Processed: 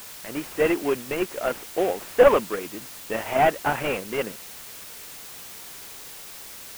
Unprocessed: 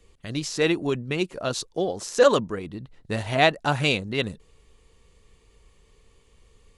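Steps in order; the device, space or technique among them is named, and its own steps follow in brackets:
army field radio (band-pass filter 340–3,300 Hz; variable-slope delta modulation 16 kbit/s; white noise bed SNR 15 dB)
level +4.5 dB

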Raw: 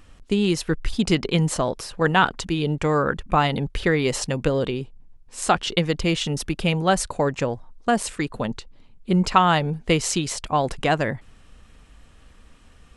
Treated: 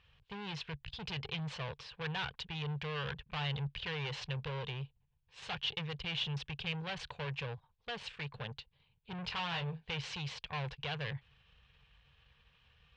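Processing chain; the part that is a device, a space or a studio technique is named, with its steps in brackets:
0:09.16–0:09.89: double-tracking delay 23 ms −6 dB
scooped metal amplifier (tube saturation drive 27 dB, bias 0.8; loudspeaker in its box 82–3,400 Hz, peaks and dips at 140 Hz +9 dB, 270 Hz −5 dB, 450 Hz +6 dB, 650 Hz −6 dB, 1,300 Hz −8 dB, 2,000 Hz −6 dB; guitar amp tone stack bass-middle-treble 10-0-10)
level +4 dB

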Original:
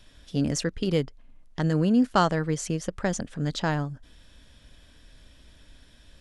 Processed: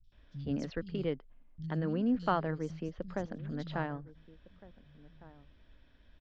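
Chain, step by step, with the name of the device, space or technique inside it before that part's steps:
low-pass filter 6,100 Hz 12 dB per octave
shout across a valley (high-frequency loss of the air 200 metres; slap from a distant wall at 250 metres, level −19 dB)
0:02.38–0:03.18: dynamic equaliser 2,100 Hz, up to −6 dB, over −47 dBFS, Q 1.1
three-band delay without the direct sound lows, highs, mids 40/120 ms, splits 150/4,400 Hz
level −7.5 dB

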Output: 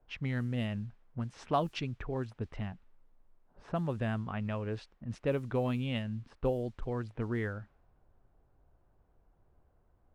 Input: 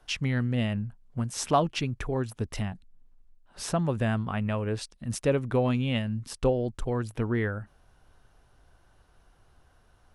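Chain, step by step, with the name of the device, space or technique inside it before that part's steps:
cassette deck with a dynamic noise filter (white noise bed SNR 31 dB; low-pass that shuts in the quiet parts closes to 690 Hz, open at −21 dBFS)
0:04.00–0:04.51: high-shelf EQ 9,600 Hz −9.5 dB
level −6.5 dB

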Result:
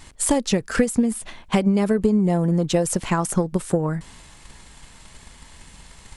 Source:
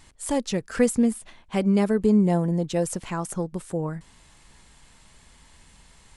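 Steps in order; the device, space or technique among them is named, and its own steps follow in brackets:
drum-bus smash (transient designer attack +8 dB, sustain +3 dB; downward compressor 6 to 1, threshold −21 dBFS, peak gain reduction 12.5 dB; soft clipping −12 dBFS, distortion −24 dB)
level +6.5 dB

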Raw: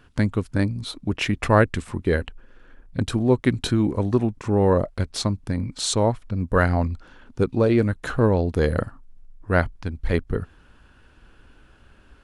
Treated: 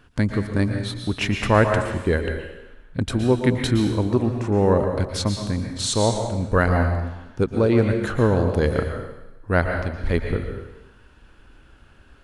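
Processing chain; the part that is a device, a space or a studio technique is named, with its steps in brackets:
bathroom (convolution reverb RT60 1.0 s, pre-delay 110 ms, DRR 3.5 dB)

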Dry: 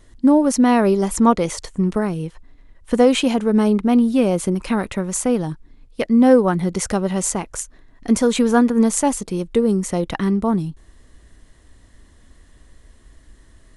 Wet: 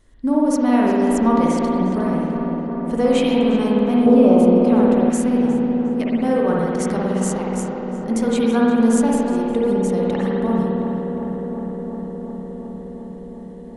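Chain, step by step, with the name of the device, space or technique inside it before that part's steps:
dub delay into a spring reverb (feedback echo with a low-pass in the loop 359 ms, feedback 83%, low-pass 2,300 Hz, level −7.5 dB; spring reverb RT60 1.8 s, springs 53 ms, chirp 45 ms, DRR −3.5 dB)
0:04.06–0:05.10: graphic EQ with 10 bands 125 Hz +5 dB, 500 Hz +8 dB, 1,000 Hz +4 dB, 2,000 Hz −5 dB, 8,000 Hz −7 dB
level −7.5 dB

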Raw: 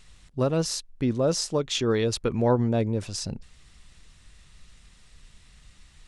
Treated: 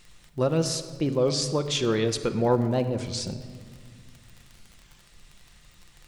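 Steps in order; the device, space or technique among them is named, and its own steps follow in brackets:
warped LP (wow of a warped record 33 1/3 rpm, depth 250 cents; surface crackle 34 per second −37 dBFS; pink noise bed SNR 40 dB)
low-shelf EQ 100 Hz −5.5 dB
rectangular room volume 2,600 cubic metres, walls mixed, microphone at 0.85 metres

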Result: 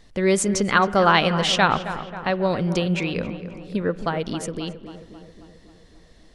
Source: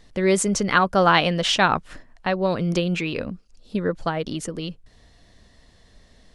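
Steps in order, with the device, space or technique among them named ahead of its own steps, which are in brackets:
dub delay into a spring reverb (feedback echo with a low-pass in the loop 269 ms, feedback 62%, low-pass 2,200 Hz, level −11.5 dB; spring reverb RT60 1.9 s, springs 36/48 ms, chirp 65 ms, DRR 19 dB)

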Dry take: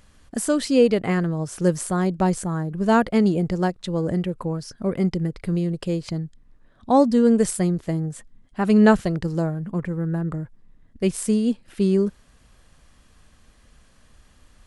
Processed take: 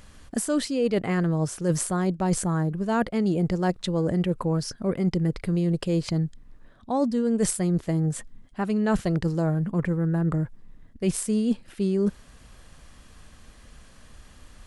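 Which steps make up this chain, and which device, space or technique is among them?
compression on the reversed sound (reversed playback; downward compressor 16 to 1, threshold −25 dBFS, peak gain reduction 16 dB; reversed playback)
level +5 dB

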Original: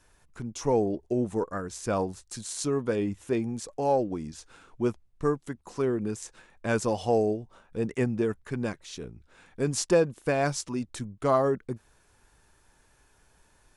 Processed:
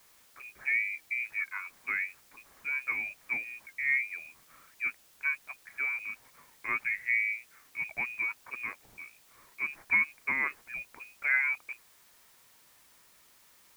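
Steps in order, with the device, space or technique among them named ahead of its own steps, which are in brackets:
scrambled radio voice (band-pass filter 340–2,700 Hz; voice inversion scrambler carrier 2,700 Hz; white noise bed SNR 26 dB)
level −3.5 dB

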